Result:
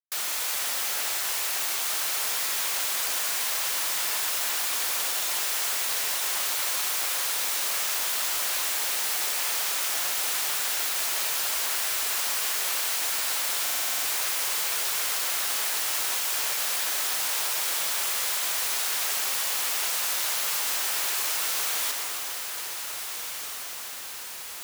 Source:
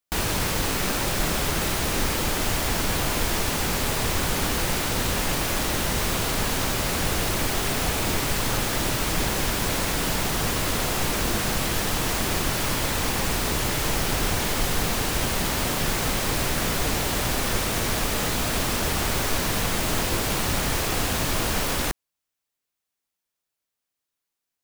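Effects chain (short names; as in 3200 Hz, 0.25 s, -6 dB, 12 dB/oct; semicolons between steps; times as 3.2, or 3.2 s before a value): random spectral dropouts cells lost 40%; in parallel at +0.5 dB: limiter -21.5 dBFS, peak gain reduction 9 dB; on the sum: high shelf 8600 Hz -6 dB; wrapped overs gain 25 dB; HPF 620 Hz 12 dB/oct; diffused feedback echo 1.63 s, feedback 60%, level -8 dB; on a send at -3 dB: reverb RT60 4.3 s, pre-delay 0.107 s; on the sum: bit-crush 7-bit; stuck buffer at 13.63, samples 2048, times 8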